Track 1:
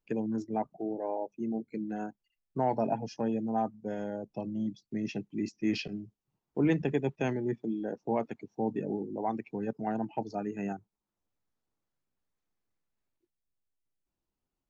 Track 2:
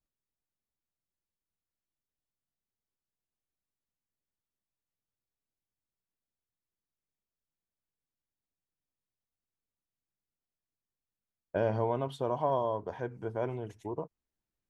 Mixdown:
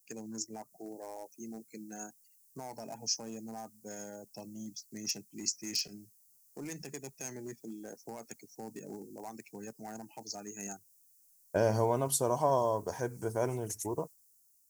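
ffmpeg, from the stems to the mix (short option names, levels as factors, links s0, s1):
-filter_complex "[0:a]tiltshelf=f=1100:g=-5,alimiter=level_in=1.5:limit=0.0631:level=0:latency=1:release=101,volume=0.668,asoftclip=type=hard:threshold=0.0316,volume=0.944[s0];[1:a]dynaudnorm=f=280:g=5:m=3.55,volume=0.335,asplit=2[s1][s2];[s2]apad=whole_len=648046[s3];[s0][s3]sidechaingate=range=0.501:threshold=0.00501:ratio=16:detection=peak[s4];[s4][s1]amix=inputs=2:normalize=0,aexciter=amount=13.7:drive=8:freq=5200"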